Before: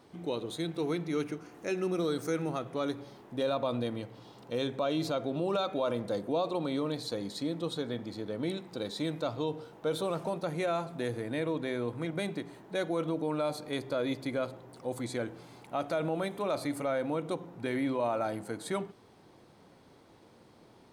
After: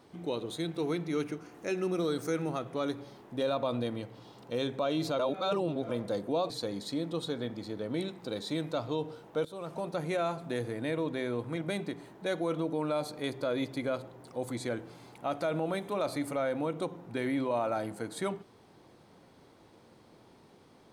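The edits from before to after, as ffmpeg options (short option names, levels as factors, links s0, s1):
-filter_complex "[0:a]asplit=5[s0][s1][s2][s3][s4];[s0]atrim=end=5.192[s5];[s1]atrim=start=5.188:end=5.892,asetpts=PTS-STARTPTS,areverse[s6];[s2]atrim=start=5.888:end=6.502[s7];[s3]atrim=start=6.988:end=9.94,asetpts=PTS-STARTPTS,afade=t=out:st=2.948:d=0.004:c=hsin:silence=0.125893[s8];[s4]atrim=start=9.94,asetpts=PTS-STARTPTS,afade=t=in:d=0.5:silence=0.125893[s9];[s5][s6]acrossfade=d=0.004:c1=hsin:c2=hsin[s10];[s10][s7]acrossfade=d=0.004:c1=hsin:c2=hsin[s11];[s8][s9]concat=n=2:v=0:a=1[s12];[s11][s12]acrossfade=d=0.004:c1=hsin:c2=hsin"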